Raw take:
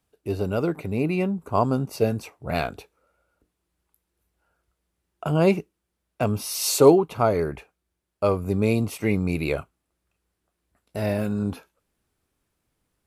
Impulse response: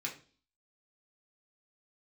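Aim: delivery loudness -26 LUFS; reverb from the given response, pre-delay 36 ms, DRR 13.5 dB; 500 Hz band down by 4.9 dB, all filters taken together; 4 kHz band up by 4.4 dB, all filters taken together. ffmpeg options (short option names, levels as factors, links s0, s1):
-filter_complex "[0:a]equalizer=f=500:t=o:g=-6.5,equalizer=f=4000:t=o:g=5.5,asplit=2[s0][s1];[1:a]atrim=start_sample=2205,adelay=36[s2];[s1][s2]afir=irnorm=-1:irlink=0,volume=0.178[s3];[s0][s3]amix=inputs=2:normalize=0"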